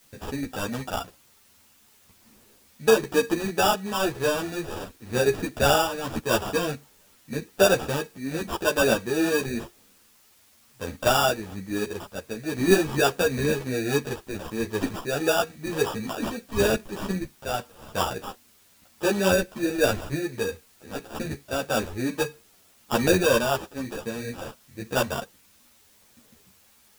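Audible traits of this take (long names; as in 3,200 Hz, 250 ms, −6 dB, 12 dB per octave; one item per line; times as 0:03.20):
aliases and images of a low sample rate 2,100 Hz, jitter 0%
tremolo triangle 0.96 Hz, depth 35%
a quantiser's noise floor 10 bits, dither triangular
a shimmering, thickened sound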